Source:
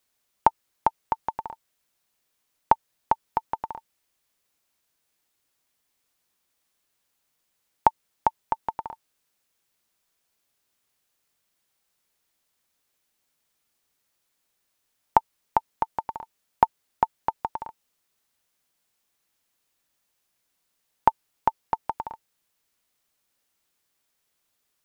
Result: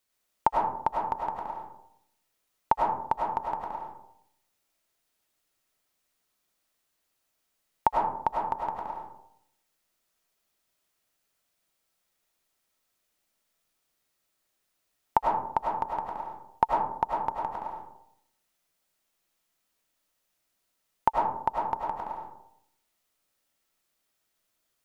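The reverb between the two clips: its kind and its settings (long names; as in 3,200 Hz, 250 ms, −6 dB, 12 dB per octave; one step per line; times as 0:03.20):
comb and all-pass reverb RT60 0.75 s, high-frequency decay 0.35×, pre-delay 60 ms, DRR −2 dB
level −5 dB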